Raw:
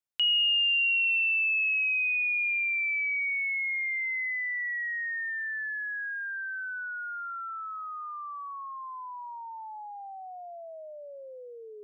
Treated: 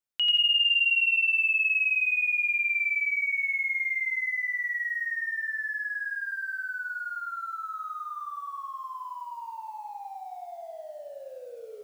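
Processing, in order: dark delay 0.139 s, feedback 68%, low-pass 910 Hz, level -9.5 dB; lo-fi delay 89 ms, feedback 35%, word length 10-bit, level -3.5 dB

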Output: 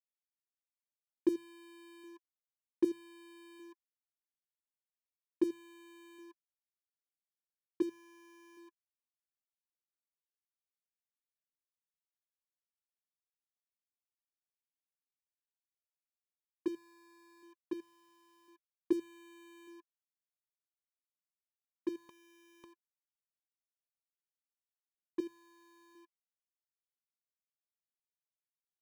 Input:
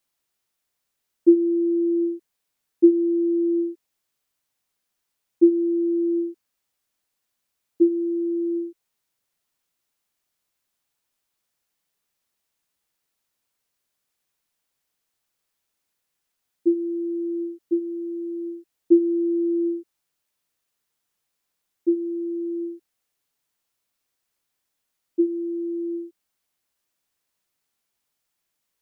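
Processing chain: notches 50/100/150 Hz; 22.09–22.64 sample leveller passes 1; crossover distortion -33 dBFS; notch comb 340 Hz

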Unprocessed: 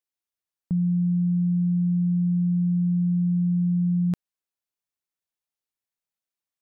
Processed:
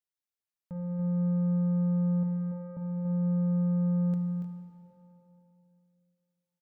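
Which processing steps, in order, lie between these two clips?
soft clip -29 dBFS, distortion -12 dB; 2.23–2.77 rippled Chebyshev high-pass 350 Hz, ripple 6 dB; tapped delay 0.284/0.306 s -7/-11 dB; plate-style reverb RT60 3.1 s, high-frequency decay 0.9×, DRR 4.5 dB; gain -7 dB

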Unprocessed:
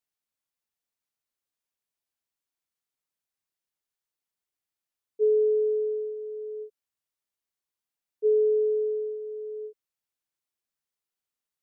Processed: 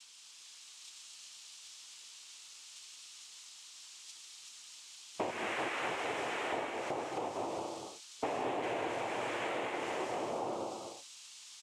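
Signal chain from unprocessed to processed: switching spikes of -33.5 dBFS; spectral noise reduction 19 dB; tube stage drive 31 dB, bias 0.75; 5.3–6.52 inverse Chebyshev high-pass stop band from 360 Hz, stop band 40 dB; bouncing-ball echo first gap 0.38 s, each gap 0.7×, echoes 5; noise vocoder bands 4; compressor 12:1, threshold -50 dBFS, peak gain reduction 21 dB; non-linear reverb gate 0.27 s rising, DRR 3.5 dB; gain +15.5 dB

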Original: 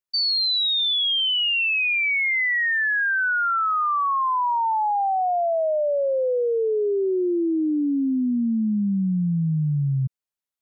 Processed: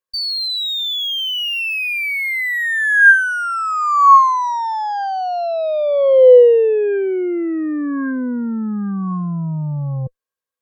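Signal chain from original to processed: added harmonics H 6 -22 dB, 8 -39 dB, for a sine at -18.5 dBFS; small resonant body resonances 500/1100/1600 Hz, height 17 dB, ringing for 55 ms

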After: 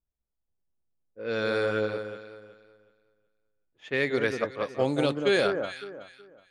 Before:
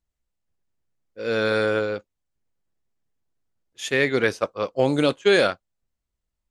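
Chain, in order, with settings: low-pass opened by the level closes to 1000 Hz, open at -16.5 dBFS; echo with dull and thin repeats by turns 0.186 s, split 1400 Hz, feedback 50%, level -5.5 dB; gain -6 dB

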